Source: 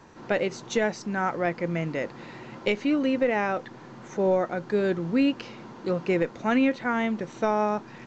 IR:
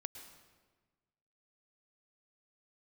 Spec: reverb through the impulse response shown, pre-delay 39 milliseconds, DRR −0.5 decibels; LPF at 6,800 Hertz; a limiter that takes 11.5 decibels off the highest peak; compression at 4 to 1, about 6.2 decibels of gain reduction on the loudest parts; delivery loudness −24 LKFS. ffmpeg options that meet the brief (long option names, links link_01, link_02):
-filter_complex "[0:a]lowpass=6800,acompressor=threshold=-26dB:ratio=4,alimiter=level_in=1dB:limit=-24dB:level=0:latency=1,volume=-1dB,asplit=2[link_01][link_02];[1:a]atrim=start_sample=2205,adelay=39[link_03];[link_02][link_03]afir=irnorm=-1:irlink=0,volume=3.5dB[link_04];[link_01][link_04]amix=inputs=2:normalize=0,volume=8.5dB"